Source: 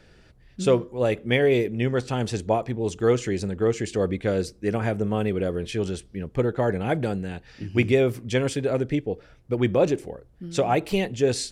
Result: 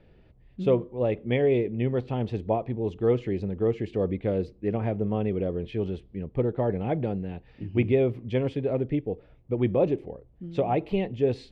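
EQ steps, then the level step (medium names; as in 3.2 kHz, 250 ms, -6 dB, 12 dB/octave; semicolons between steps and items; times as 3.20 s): distance through air 330 m; peaking EQ 1.5 kHz -10.5 dB 0.64 oct; peaking EQ 5.4 kHz -6 dB 0.8 oct; -1.5 dB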